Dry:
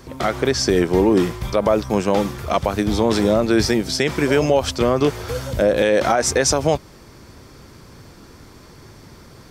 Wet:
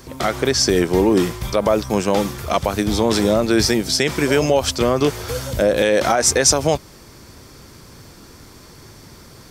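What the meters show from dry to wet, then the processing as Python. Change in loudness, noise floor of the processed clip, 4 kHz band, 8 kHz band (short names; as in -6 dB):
+1.0 dB, -44 dBFS, +4.0 dB, +5.5 dB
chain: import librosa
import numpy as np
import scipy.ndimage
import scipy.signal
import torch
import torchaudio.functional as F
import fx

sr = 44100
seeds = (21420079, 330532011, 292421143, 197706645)

y = fx.high_shelf(x, sr, hz=4200.0, db=7.5)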